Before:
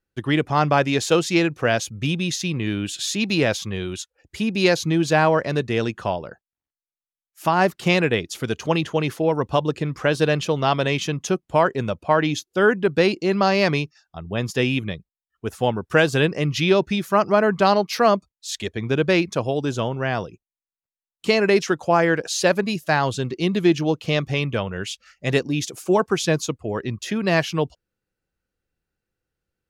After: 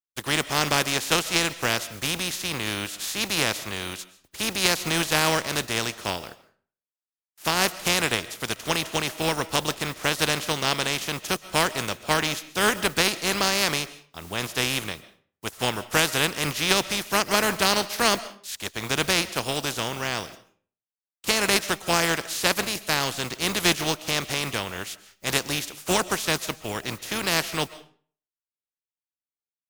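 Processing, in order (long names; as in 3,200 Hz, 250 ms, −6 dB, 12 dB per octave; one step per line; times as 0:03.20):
compressing power law on the bin magnitudes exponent 0.34
noise gate with hold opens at −44 dBFS
on a send: convolution reverb RT60 0.45 s, pre-delay 95 ms, DRR 16.5 dB
on the sum: level −4.5 dB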